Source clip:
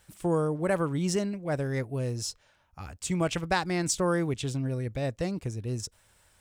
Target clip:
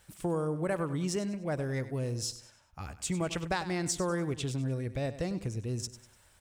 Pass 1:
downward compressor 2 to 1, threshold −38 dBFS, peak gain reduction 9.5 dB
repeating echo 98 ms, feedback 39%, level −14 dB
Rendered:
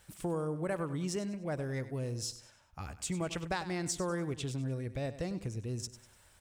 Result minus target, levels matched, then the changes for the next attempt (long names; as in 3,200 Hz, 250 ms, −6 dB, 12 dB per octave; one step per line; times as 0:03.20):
downward compressor: peak gain reduction +3 dB
change: downward compressor 2 to 1, threshold −31.5 dBFS, peak gain reduction 6 dB